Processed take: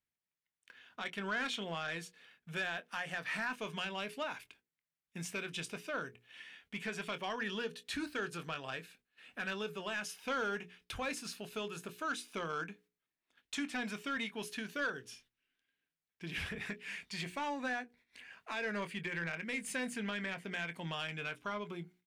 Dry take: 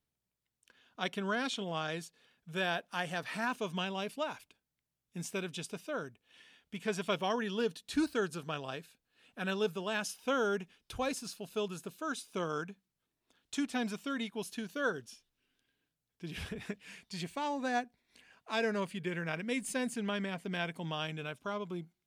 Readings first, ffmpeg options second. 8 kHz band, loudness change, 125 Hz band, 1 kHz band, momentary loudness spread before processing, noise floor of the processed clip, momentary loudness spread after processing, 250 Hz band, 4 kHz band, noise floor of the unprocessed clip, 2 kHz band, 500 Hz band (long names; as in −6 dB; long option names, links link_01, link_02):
−2.5 dB, −3.0 dB, −4.5 dB, −3.5 dB, 10 LU, below −85 dBFS, 12 LU, −5.5 dB, −1.5 dB, below −85 dBFS, +1.0 dB, −6.5 dB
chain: -filter_complex "[0:a]asplit=2[link_01][link_02];[link_02]acompressor=threshold=-44dB:ratio=6,volume=-1.5dB[link_03];[link_01][link_03]amix=inputs=2:normalize=0,alimiter=limit=-24dB:level=0:latency=1:release=215,equalizer=frequency=2000:width_type=o:width=1.3:gain=10,asplit=2[link_04][link_05];[link_05]adelay=24,volume=-13dB[link_06];[link_04][link_06]amix=inputs=2:normalize=0,agate=range=-11dB:threshold=-59dB:ratio=16:detection=peak,bandreject=frequency=60:width_type=h:width=6,bandreject=frequency=120:width_type=h:width=6,bandreject=frequency=180:width_type=h:width=6,bandreject=frequency=240:width_type=h:width=6,bandreject=frequency=300:width_type=h:width=6,bandreject=frequency=360:width_type=h:width=6,bandreject=frequency=420:width_type=h:width=6,bandreject=frequency=480:width_type=h:width=6,asoftclip=type=tanh:threshold=-23.5dB,volume=-5dB"